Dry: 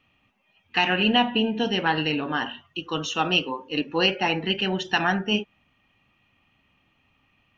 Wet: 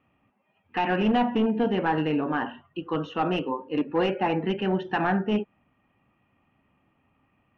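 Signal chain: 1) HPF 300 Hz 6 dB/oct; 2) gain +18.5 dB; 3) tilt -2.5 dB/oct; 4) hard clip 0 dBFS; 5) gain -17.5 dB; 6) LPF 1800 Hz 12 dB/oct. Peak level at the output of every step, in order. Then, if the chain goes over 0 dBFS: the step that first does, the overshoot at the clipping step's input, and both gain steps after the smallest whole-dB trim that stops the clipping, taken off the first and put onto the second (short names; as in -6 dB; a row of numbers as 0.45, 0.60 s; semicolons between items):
-8.0, +10.5, +9.5, 0.0, -17.5, -17.0 dBFS; step 2, 9.5 dB; step 2 +8.5 dB, step 5 -7.5 dB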